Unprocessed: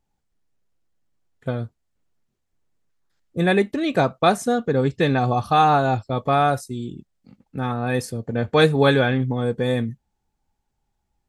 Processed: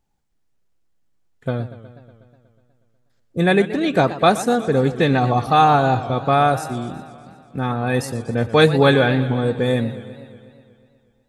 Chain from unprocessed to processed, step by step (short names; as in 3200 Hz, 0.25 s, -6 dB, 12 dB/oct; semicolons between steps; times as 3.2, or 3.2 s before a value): warbling echo 0.122 s, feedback 70%, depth 157 cents, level -15 dB; gain +2.5 dB